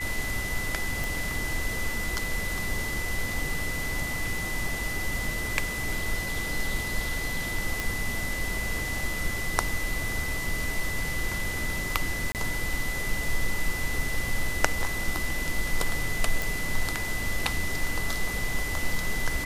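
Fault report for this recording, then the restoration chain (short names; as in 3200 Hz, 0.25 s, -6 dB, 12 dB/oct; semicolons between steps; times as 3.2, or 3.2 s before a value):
tone 2000 Hz -32 dBFS
1.04 pop
7.8 pop
12.32–12.35 gap 28 ms
16.42 pop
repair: de-click; notch 2000 Hz, Q 30; interpolate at 12.32, 28 ms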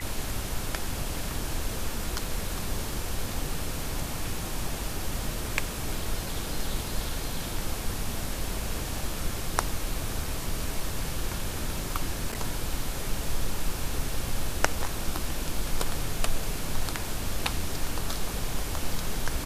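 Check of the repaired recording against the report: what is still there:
none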